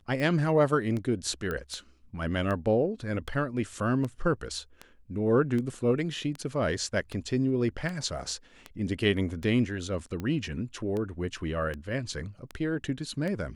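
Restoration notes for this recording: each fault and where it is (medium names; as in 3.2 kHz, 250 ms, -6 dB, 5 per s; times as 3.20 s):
tick 78 rpm -22 dBFS
1.51 s: pop -20 dBFS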